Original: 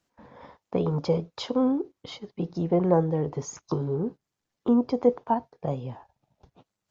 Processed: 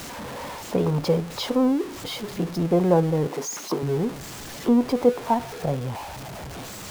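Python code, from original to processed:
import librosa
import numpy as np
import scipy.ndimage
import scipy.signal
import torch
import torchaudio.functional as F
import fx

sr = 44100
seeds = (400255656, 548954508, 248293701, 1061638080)

y = x + 0.5 * 10.0 ** (-32.5 / 20.0) * np.sign(x)
y = fx.highpass(y, sr, hz=210.0, slope=24, at=(3.27, 3.83))
y = y * librosa.db_to_amplitude(2.0)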